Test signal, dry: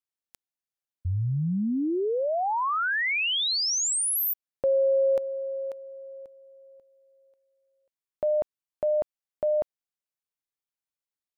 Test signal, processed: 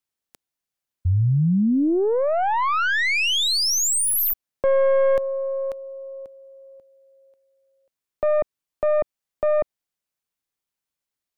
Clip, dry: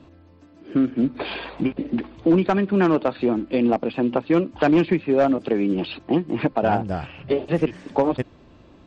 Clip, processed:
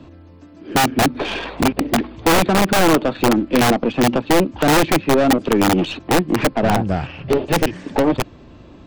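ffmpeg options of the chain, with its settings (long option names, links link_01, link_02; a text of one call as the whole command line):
ffmpeg -i in.wav -filter_complex "[0:a]acrossover=split=330[link_01][link_02];[link_01]aeval=exprs='(mod(8.41*val(0)+1,2)-1)/8.41':channel_layout=same[link_03];[link_02]aeval=exprs='(tanh(15.8*val(0)+0.5)-tanh(0.5))/15.8':channel_layout=same[link_04];[link_03][link_04]amix=inputs=2:normalize=0,volume=8dB" out.wav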